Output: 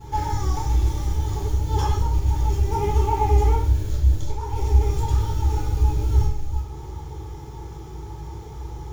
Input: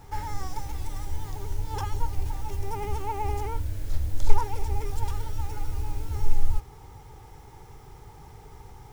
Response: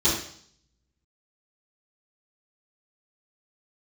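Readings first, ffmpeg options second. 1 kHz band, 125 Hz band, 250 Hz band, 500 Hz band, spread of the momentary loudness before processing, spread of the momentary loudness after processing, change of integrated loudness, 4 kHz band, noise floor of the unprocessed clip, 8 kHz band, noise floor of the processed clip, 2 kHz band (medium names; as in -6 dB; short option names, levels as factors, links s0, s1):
+7.0 dB, +11.5 dB, +10.5 dB, +9.0 dB, 18 LU, 16 LU, +10.5 dB, +6.5 dB, -48 dBFS, no reading, -36 dBFS, +3.0 dB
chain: -filter_complex "[0:a]acompressor=threshold=0.0891:ratio=6[s0];[1:a]atrim=start_sample=2205[s1];[s0][s1]afir=irnorm=-1:irlink=0,volume=0.398"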